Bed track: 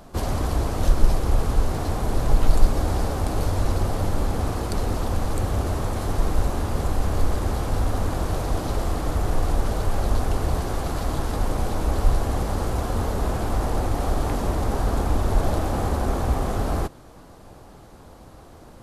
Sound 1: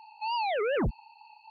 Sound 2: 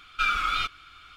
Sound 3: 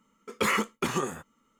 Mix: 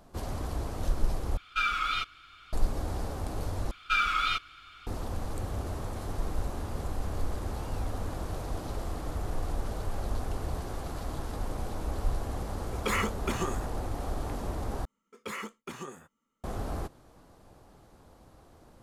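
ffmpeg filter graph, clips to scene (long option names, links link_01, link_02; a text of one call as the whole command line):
ffmpeg -i bed.wav -i cue0.wav -i cue1.wav -i cue2.wav -filter_complex "[2:a]asplit=2[link_01][link_02];[3:a]asplit=2[link_03][link_04];[0:a]volume=-10.5dB[link_05];[1:a]asoftclip=type=tanh:threshold=-38dB[link_06];[link_05]asplit=4[link_07][link_08][link_09][link_10];[link_07]atrim=end=1.374[link_11];[link_01]atrim=end=1.16,asetpts=PTS-STARTPTS,volume=-3.5dB[link_12];[link_08]atrim=start=2.526:end=3.714[link_13];[link_02]atrim=end=1.16,asetpts=PTS-STARTPTS,volume=-1.5dB[link_14];[link_09]atrim=start=4.866:end=14.854[link_15];[link_04]atrim=end=1.59,asetpts=PTS-STARTPTS,volume=-12.5dB[link_16];[link_10]atrim=start=16.436[link_17];[link_06]atrim=end=1.5,asetpts=PTS-STARTPTS,volume=-15.5dB,afade=type=in:duration=0.004:curve=hsin,afade=type=out:start_time=1.496:duration=0.004:curve=hsin,adelay=7350[link_18];[link_03]atrim=end=1.59,asetpts=PTS-STARTPTS,volume=-4dB,afade=type=in:duration=0.004:curve=hsin,afade=type=out:start_time=1.586:duration=0.004:curve=hsin,adelay=12450[link_19];[link_11][link_12]acrossfade=duration=0.004:curve1=hsin:curve2=hsin[link_20];[link_20][link_13]acrossfade=duration=0.004:curve1=hsin:curve2=hsin[link_21];[link_21][link_14]acrossfade=duration=0.004:curve1=hsin:curve2=hsin[link_22];[link_22][link_15]acrossfade=duration=0.004:curve1=hsin:curve2=hsin[link_23];[link_23][link_16]acrossfade=duration=0.004:curve1=hsin:curve2=hsin[link_24];[link_24][link_17]acrossfade=duration=0.004:curve1=hsin:curve2=hsin[link_25];[link_25][link_18][link_19]amix=inputs=3:normalize=0" out.wav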